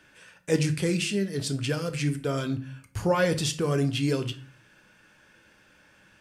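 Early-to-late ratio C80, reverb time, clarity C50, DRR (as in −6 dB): 19.0 dB, 0.45 s, 15.0 dB, 7.0 dB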